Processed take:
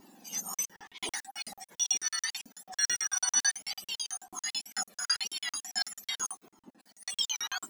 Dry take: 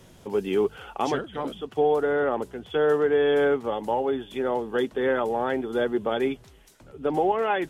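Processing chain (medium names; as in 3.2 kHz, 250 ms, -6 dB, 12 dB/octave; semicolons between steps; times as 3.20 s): spectrum inverted on a logarithmic axis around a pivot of 1.6 kHz; crackling interface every 0.11 s, samples 2048, zero, from 0.54 s; Shepard-style flanger falling 0.91 Hz; trim +1.5 dB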